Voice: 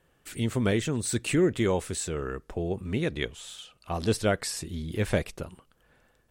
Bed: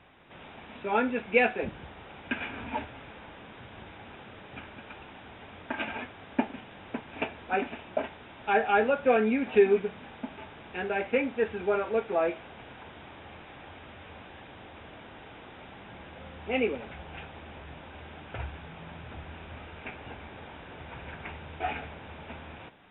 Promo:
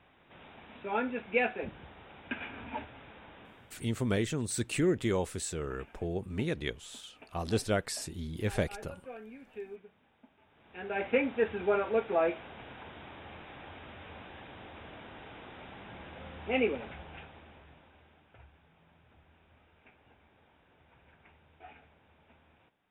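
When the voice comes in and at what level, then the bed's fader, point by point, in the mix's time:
3.45 s, -4.5 dB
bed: 3.44 s -5.5 dB
4.11 s -22.5 dB
10.40 s -22.5 dB
11.05 s -1 dB
16.83 s -1 dB
18.36 s -20 dB

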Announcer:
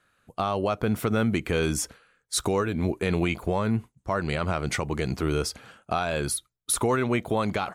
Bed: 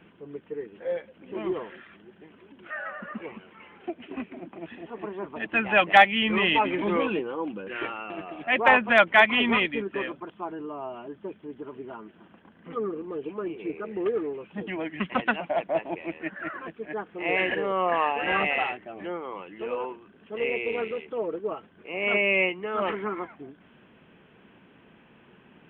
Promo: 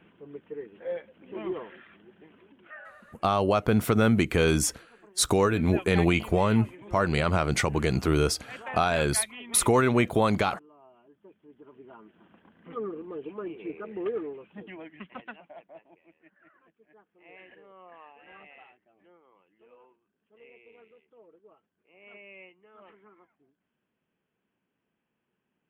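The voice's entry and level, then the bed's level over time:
2.85 s, +2.5 dB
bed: 2.39 s -3.5 dB
3.32 s -20 dB
11.01 s -20 dB
12.35 s -4 dB
14.19 s -4 dB
16.00 s -26 dB

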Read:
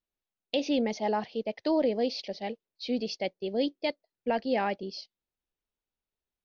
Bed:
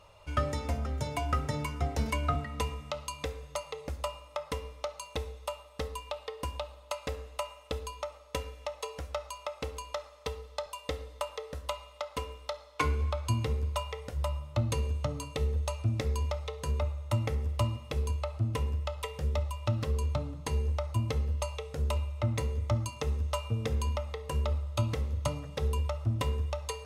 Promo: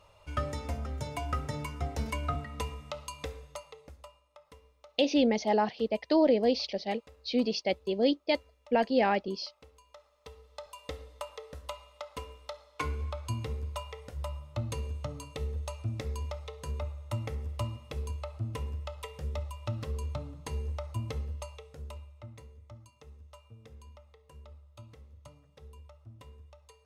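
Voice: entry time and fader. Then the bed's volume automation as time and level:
4.45 s, +2.5 dB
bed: 3.37 s -3 dB
4.23 s -19.5 dB
9.82 s -19.5 dB
10.81 s -5 dB
21.18 s -5 dB
22.59 s -21 dB

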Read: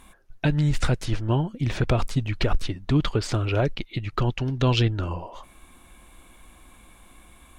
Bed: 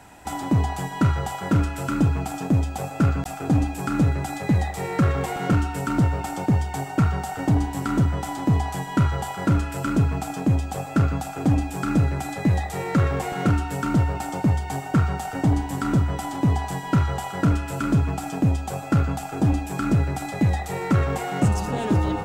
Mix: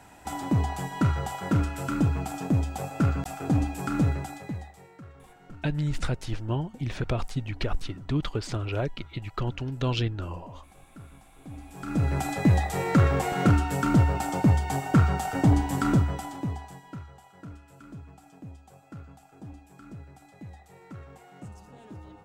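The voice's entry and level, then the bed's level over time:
5.20 s, -6.0 dB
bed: 4.12 s -4 dB
5.00 s -27 dB
11.39 s -27 dB
12.16 s 0 dB
15.89 s 0 dB
17.12 s -23.5 dB

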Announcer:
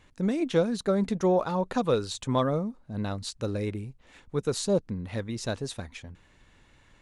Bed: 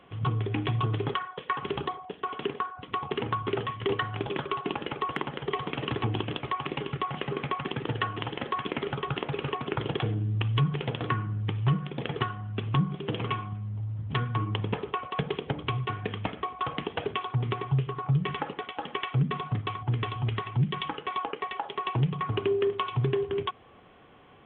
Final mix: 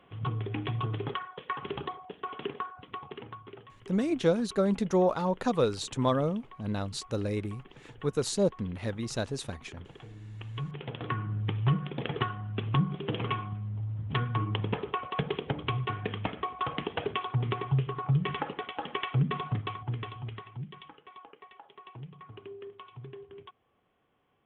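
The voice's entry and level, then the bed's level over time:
3.70 s, -1.0 dB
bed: 2.70 s -4.5 dB
3.67 s -20.5 dB
9.95 s -20.5 dB
11.35 s -1 dB
19.50 s -1 dB
20.99 s -18.5 dB

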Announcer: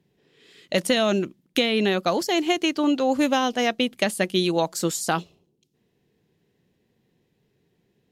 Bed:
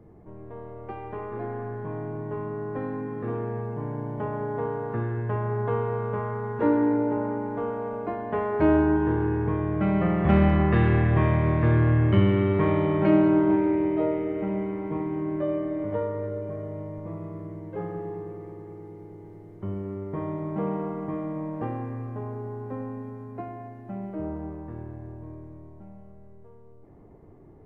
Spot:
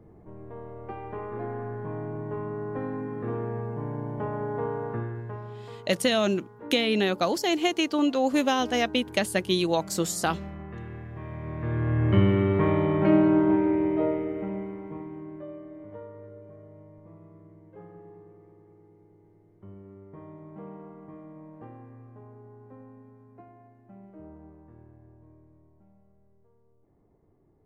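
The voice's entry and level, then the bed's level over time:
5.15 s, -2.5 dB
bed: 4.87 s -1 dB
5.86 s -19 dB
11.15 s -19 dB
12.15 s -0.5 dB
14.09 s -0.5 dB
15.56 s -14 dB

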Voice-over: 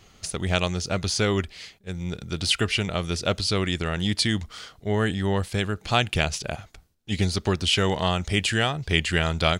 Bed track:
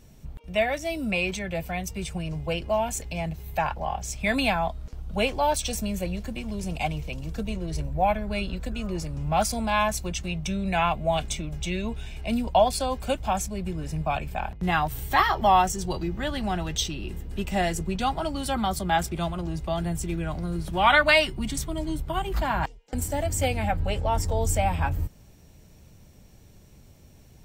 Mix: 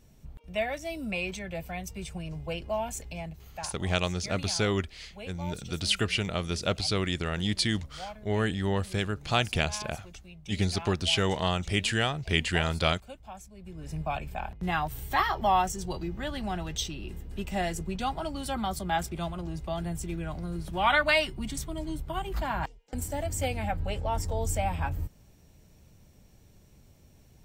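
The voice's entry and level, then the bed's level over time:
3.40 s, -4.0 dB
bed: 3.10 s -6 dB
3.88 s -18.5 dB
13.53 s -18.5 dB
13.93 s -5 dB

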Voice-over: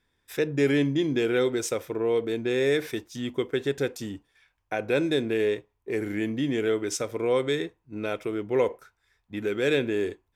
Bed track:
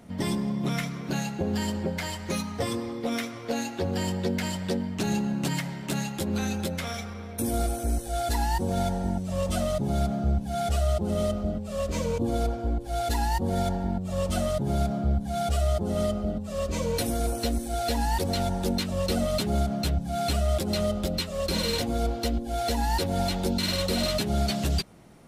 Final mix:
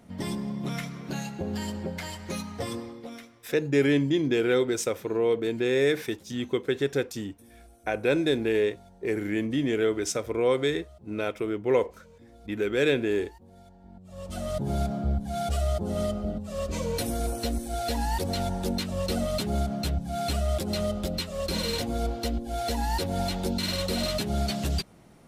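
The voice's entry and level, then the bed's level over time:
3.15 s, +0.5 dB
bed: 2.78 s -4 dB
3.66 s -26 dB
13.73 s -26 dB
14.58 s -2 dB

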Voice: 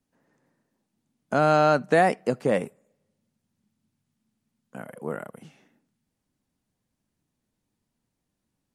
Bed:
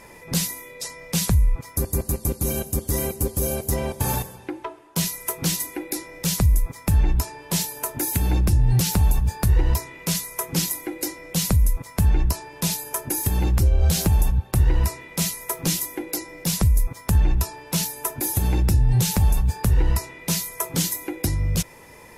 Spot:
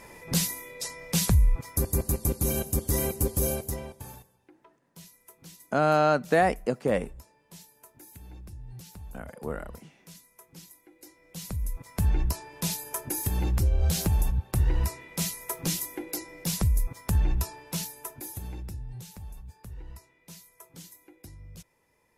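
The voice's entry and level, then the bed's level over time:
4.40 s, -2.5 dB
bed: 3.49 s -2.5 dB
4.26 s -25.5 dB
10.89 s -25.5 dB
12.04 s -6 dB
17.52 s -6 dB
19.10 s -24 dB

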